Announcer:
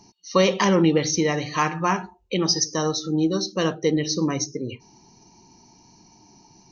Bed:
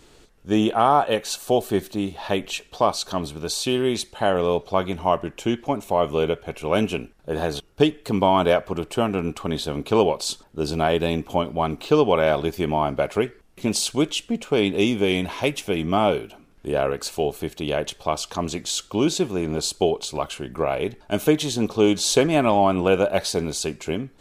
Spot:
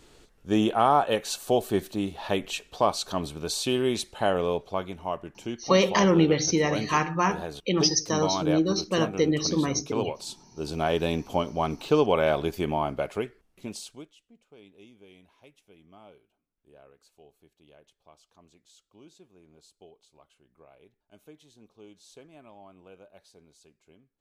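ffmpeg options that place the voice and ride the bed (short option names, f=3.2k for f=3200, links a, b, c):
-filter_complex "[0:a]adelay=5350,volume=-2dB[a];[1:a]volume=3.5dB,afade=t=out:st=4.22:d=0.74:silence=0.421697,afade=t=in:st=10.48:d=0.52:silence=0.446684,afade=t=out:st=12.56:d=1.56:silence=0.0375837[b];[a][b]amix=inputs=2:normalize=0"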